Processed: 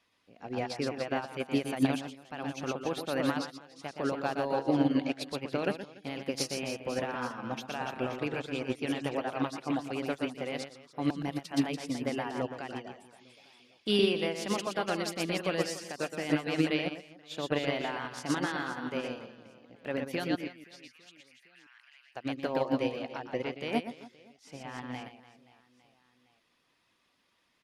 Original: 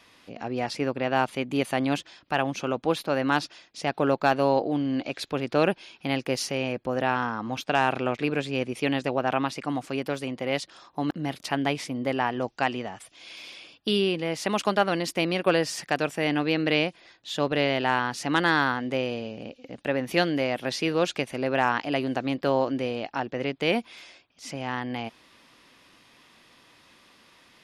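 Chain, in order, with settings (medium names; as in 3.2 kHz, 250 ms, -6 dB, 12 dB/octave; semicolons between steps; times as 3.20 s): reverb removal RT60 0.68 s; peak limiter -19 dBFS, peak gain reduction 10.5 dB; 20.35–22.15 s: ladder high-pass 1.6 kHz, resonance 35%; reverse bouncing-ball echo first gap 120 ms, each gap 1.4×, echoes 5; upward expansion 2.5:1, over -37 dBFS; trim +3.5 dB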